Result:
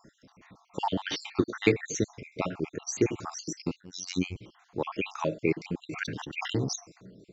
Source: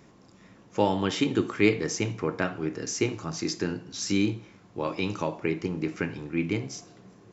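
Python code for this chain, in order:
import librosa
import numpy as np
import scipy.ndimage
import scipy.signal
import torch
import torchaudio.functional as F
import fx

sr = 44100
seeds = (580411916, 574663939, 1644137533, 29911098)

y = fx.spec_dropout(x, sr, seeds[0], share_pct=61)
y = fx.robotise(y, sr, hz=90.6, at=(3.81, 4.36))
y = fx.sustainer(y, sr, db_per_s=46.0, at=(5.85, 6.76))
y = F.gain(torch.from_numpy(y), 2.0).numpy()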